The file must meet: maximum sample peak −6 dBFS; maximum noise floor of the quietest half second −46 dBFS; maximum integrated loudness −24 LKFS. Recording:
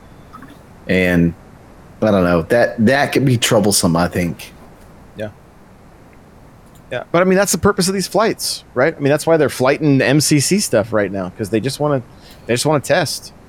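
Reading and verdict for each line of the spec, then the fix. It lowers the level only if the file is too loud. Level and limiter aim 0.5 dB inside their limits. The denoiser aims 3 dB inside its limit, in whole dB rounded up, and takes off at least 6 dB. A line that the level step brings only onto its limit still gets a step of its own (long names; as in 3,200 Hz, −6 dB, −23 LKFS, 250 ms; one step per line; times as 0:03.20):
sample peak −3.0 dBFS: out of spec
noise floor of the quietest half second −43 dBFS: out of spec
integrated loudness −15.5 LKFS: out of spec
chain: level −9 dB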